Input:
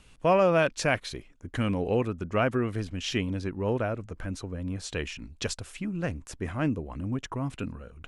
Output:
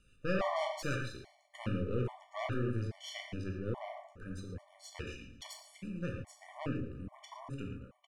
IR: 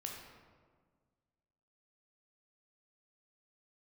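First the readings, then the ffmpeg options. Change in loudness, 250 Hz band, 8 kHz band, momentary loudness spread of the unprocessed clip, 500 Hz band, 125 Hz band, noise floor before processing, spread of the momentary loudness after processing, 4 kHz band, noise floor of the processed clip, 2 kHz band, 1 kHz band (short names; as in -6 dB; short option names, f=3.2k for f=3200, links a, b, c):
-10.0 dB, -10.0 dB, -12.5 dB, 12 LU, -12.0 dB, -7.5 dB, -55 dBFS, 14 LU, -10.0 dB, -66 dBFS, -10.5 dB, -10.0 dB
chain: -filter_complex "[0:a]aeval=exprs='0.282*(cos(1*acos(clip(val(0)/0.282,-1,1)))-cos(1*PI/2))+0.0794*(cos(4*acos(clip(val(0)/0.282,-1,1)))-cos(4*PI/2))':c=same,aecho=1:1:114|228|342|456:0.15|0.0733|0.0359|0.0176[a];[1:a]atrim=start_sample=2205,afade=t=out:st=0.2:d=0.01,atrim=end_sample=9261[b];[a][b]afir=irnorm=-1:irlink=0,afftfilt=real='re*gt(sin(2*PI*1.2*pts/sr)*(1-2*mod(floor(b*sr/1024/590),2)),0)':imag='im*gt(sin(2*PI*1.2*pts/sr)*(1-2*mod(floor(b*sr/1024/590),2)),0)':win_size=1024:overlap=0.75,volume=-7dB"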